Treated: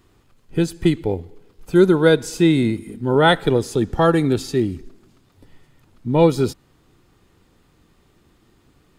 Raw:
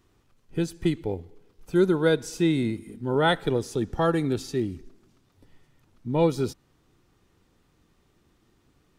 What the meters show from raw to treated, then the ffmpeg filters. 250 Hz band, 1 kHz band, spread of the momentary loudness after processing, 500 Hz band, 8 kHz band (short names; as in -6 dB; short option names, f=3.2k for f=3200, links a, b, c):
+7.5 dB, +7.5 dB, 11 LU, +7.5 dB, +6.5 dB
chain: -af "bandreject=f=5.8k:w=12,volume=7.5dB"